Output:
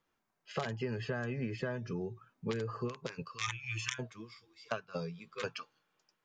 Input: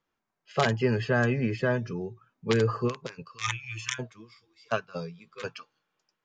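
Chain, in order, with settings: compressor 12:1, threshold -34 dBFS, peak gain reduction 15.5 dB; gain +1 dB

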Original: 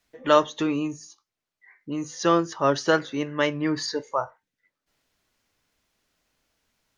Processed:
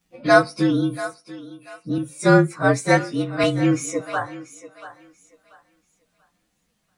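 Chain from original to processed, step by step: inharmonic rescaling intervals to 113%; bell 180 Hz +14 dB 0.59 oct; thinning echo 0.686 s, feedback 27%, high-pass 370 Hz, level -14 dB; 1.98–3.44 three-band expander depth 40%; gain +5 dB

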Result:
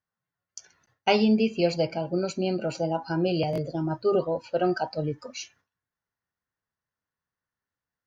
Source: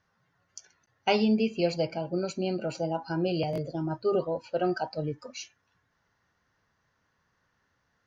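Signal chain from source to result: gate with hold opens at -58 dBFS; gain +3 dB

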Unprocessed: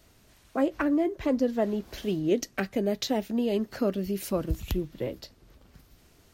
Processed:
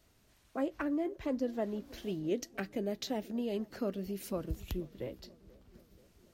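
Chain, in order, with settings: darkening echo 0.482 s, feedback 67%, low-pass 1100 Hz, level -21.5 dB; gain -8.5 dB

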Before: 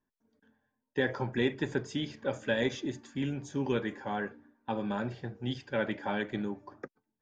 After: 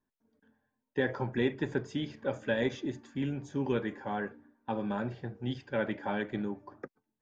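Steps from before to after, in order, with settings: high shelf 3500 Hz -8.5 dB

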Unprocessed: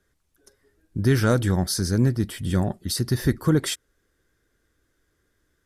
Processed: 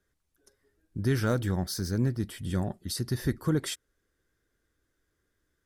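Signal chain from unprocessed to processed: 1.25–2.18 decimation joined by straight lines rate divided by 2×; gain -7 dB

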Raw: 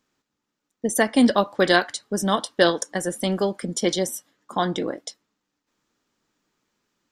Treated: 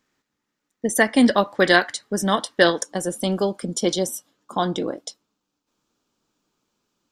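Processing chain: bell 1900 Hz +5 dB 0.43 oct, from 2.85 s -10 dB; gain +1 dB

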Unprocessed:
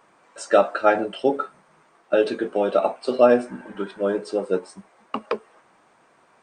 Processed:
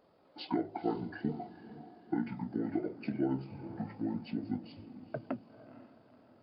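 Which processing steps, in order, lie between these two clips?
notches 50/100/150/200/250/300/350 Hz; compressor 2:1, threshold -27 dBFS, peak gain reduction 10 dB; on a send: diffused feedback echo 0.475 s, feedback 44%, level -14 dB; on the sum: pitch shift -10.5 st; gain -8 dB

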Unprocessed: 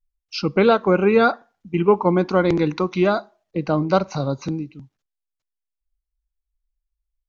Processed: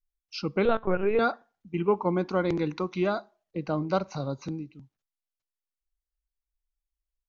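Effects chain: 0.65–1.19 LPC vocoder at 8 kHz pitch kept; gain -8.5 dB

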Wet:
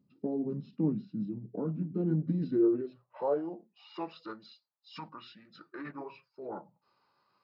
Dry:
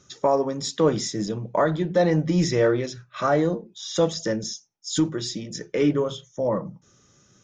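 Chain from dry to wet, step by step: band-pass sweep 270 Hz -> 1400 Hz, 1.95–4.06; formant shift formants -5 st; gain -3 dB

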